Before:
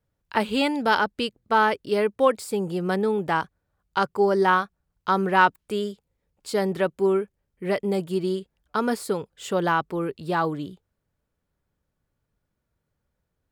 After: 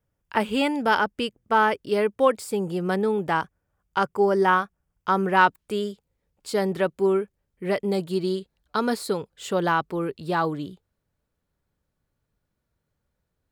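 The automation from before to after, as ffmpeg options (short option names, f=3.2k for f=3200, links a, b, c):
-af "asetnsamples=n=441:p=0,asendcmd='1.79 equalizer g -3.5;3.41 equalizer g -11.5;5.37 equalizer g 0;7.88 equalizer g 9;9.14 equalizer g 2.5',equalizer=f=4.1k:t=o:w=0.24:g=-11"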